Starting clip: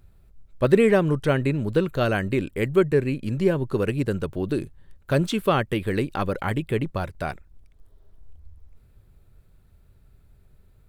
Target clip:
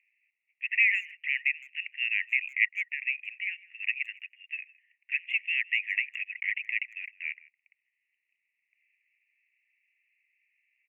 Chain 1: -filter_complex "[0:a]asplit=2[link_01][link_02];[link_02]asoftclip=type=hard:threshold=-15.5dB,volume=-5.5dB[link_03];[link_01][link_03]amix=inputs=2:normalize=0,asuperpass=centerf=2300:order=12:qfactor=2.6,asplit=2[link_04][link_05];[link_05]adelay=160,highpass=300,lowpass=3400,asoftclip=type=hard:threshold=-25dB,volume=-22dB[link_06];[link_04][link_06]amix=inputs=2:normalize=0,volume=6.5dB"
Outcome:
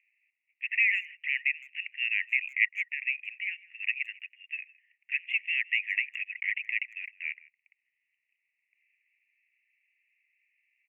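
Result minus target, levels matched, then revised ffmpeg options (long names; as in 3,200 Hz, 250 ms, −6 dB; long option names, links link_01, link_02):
hard clipping: distortion +14 dB
-filter_complex "[0:a]asplit=2[link_01][link_02];[link_02]asoftclip=type=hard:threshold=-8.5dB,volume=-5.5dB[link_03];[link_01][link_03]amix=inputs=2:normalize=0,asuperpass=centerf=2300:order=12:qfactor=2.6,asplit=2[link_04][link_05];[link_05]adelay=160,highpass=300,lowpass=3400,asoftclip=type=hard:threshold=-25dB,volume=-22dB[link_06];[link_04][link_06]amix=inputs=2:normalize=0,volume=6.5dB"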